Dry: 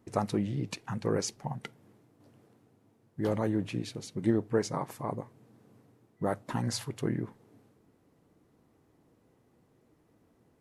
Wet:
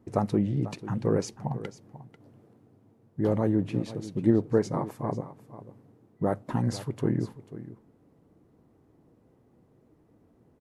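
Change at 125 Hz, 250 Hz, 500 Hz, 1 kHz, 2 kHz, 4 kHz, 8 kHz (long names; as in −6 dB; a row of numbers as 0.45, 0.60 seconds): +5.5, +5.0, +4.0, +1.5, −2.0, −4.5, −5.0 decibels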